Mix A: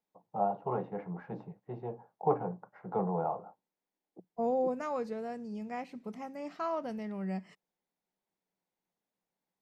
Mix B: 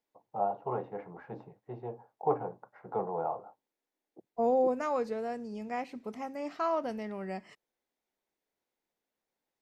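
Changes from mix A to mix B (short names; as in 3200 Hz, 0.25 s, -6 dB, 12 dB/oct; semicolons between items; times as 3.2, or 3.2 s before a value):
second voice +4.0 dB; master: add bell 180 Hz -13 dB 0.36 oct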